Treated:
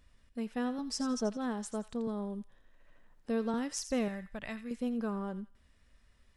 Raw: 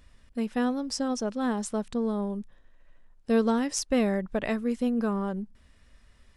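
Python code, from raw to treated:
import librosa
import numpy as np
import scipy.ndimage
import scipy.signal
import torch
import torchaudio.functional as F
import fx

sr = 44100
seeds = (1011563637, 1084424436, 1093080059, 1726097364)

p1 = fx.comb(x, sr, ms=4.6, depth=0.96, at=(0.78, 1.37))
p2 = fx.peak_eq(p1, sr, hz=410.0, db=-11.0, octaves=1.7, at=(4.08, 4.71))
p3 = p2 + fx.echo_wet_highpass(p2, sr, ms=84, feedback_pct=32, hz=1500.0, wet_db=-10.5, dry=0)
p4 = fx.band_squash(p3, sr, depth_pct=40, at=(2.07, 3.54))
y = p4 * librosa.db_to_amplitude(-7.5)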